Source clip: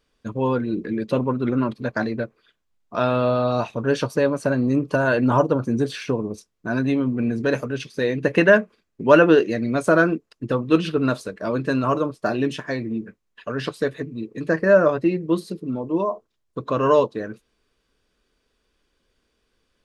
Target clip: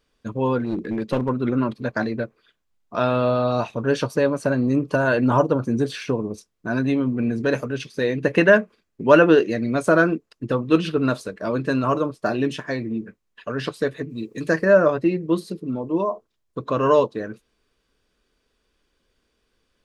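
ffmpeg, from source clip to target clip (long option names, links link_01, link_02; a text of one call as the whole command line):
ffmpeg -i in.wav -filter_complex "[0:a]asplit=3[link_01][link_02][link_03];[link_01]afade=type=out:start_time=0.6:duration=0.02[link_04];[link_02]aeval=exprs='clip(val(0),-1,0.0708)':channel_layout=same,afade=type=in:start_time=0.6:duration=0.02,afade=type=out:start_time=1.28:duration=0.02[link_05];[link_03]afade=type=in:start_time=1.28:duration=0.02[link_06];[link_04][link_05][link_06]amix=inputs=3:normalize=0,asplit=3[link_07][link_08][link_09];[link_07]afade=type=out:start_time=14.09:duration=0.02[link_10];[link_08]highshelf=frequency=3500:gain=12,afade=type=in:start_time=14.09:duration=0.02,afade=type=out:start_time=14.63:duration=0.02[link_11];[link_09]afade=type=in:start_time=14.63:duration=0.02[link_12];[link_10][link_11][link_12]amix=inputs=3:normalize=0" out.wav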